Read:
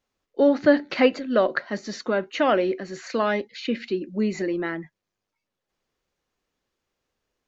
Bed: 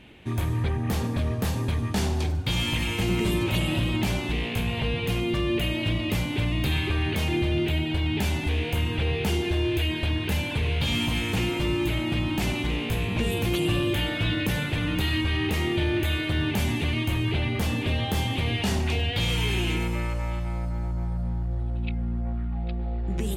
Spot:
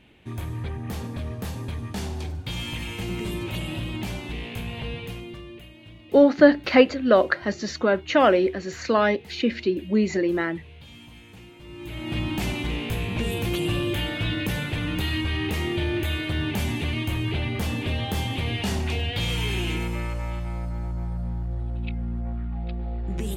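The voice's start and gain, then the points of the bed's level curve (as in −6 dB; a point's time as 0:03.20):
5.75 s, +3.0 dB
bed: 0:04.94 −5.5 dB
0:05.72 −20.5 dB
0:11.59 −20.5 dB
0:12.17 −1 dB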